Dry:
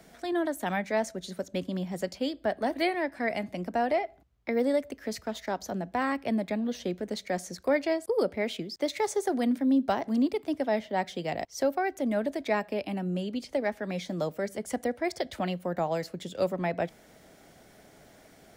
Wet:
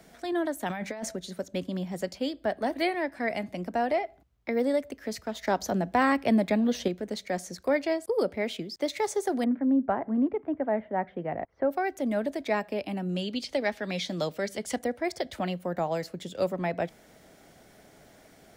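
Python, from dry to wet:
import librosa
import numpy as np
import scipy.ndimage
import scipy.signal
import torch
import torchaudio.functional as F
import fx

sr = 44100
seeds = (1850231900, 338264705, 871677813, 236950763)

y = fx.over_compress(x, sr, threshold_db=-34.0, ratio=-1.0, at=(0.67, 1.15), fade=0.02)
y = fx.lowpass(y, sr, hz=1800.0, slope=24, at=(9.44, 11.71))
y = fx.peak_eq(y, sr, hz=3800.0, db=9.5, octaves=1.7, at=(13.09, 14.79))
y = fx.edit(y, sr, fx.clip_gain(start_s=5.43, length_s=1.45, db=5.5), tone=tone)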